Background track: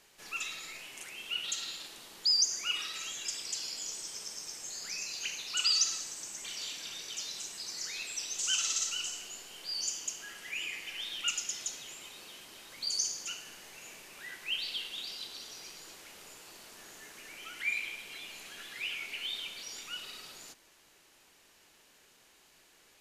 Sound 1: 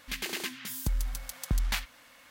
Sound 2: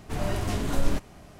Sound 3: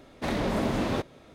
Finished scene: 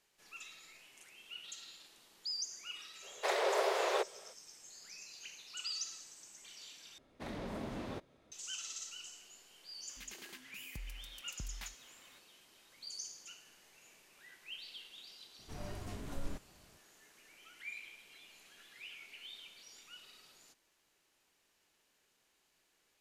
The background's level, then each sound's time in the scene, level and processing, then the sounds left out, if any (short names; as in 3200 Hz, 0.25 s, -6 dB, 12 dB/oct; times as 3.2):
background track -13 dB
3.01 add 3 -1 dB, fades 0.05 s + steep high-pass 380 Hz 96 dB/oct
6.98 replace with 3 -15 dB
9.89 add 1 -17 dB + upward compressor, threshold -36 dBFS
15.39 add 2 -16.5 dB